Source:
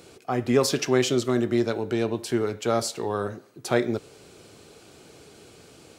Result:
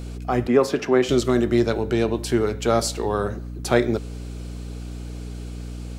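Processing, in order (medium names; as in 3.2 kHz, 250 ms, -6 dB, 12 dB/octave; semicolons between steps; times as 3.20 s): hum 60 Hz, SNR 10 dB; 0.47–1.09 s: three-band isolator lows -16 dB, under 170 Hz, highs -13 dB, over 2.3 kHz; trim +4 dB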